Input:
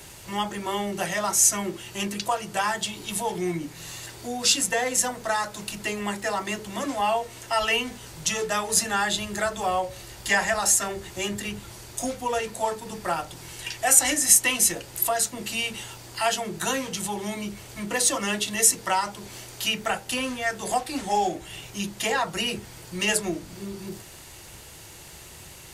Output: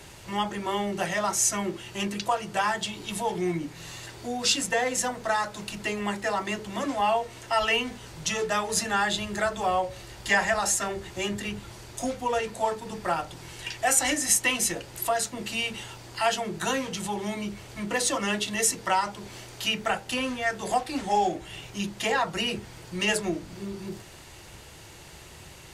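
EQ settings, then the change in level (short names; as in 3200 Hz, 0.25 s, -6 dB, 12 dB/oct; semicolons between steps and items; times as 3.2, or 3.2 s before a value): high shelf 7700 Hz -11.5 dB; 0.0 dB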